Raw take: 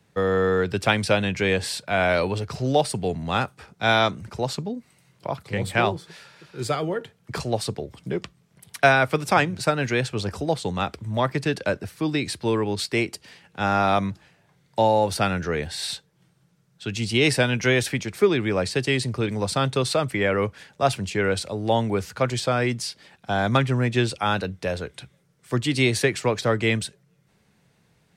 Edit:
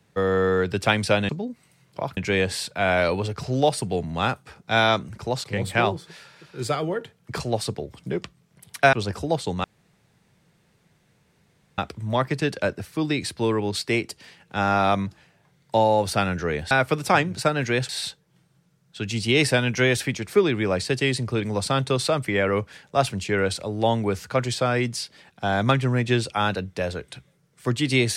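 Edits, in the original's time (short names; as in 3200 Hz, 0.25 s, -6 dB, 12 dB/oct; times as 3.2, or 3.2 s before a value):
4.56–5.44 move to 1.29
8.93–10.11 move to 15.75
10.82 insert room tone 2.14 s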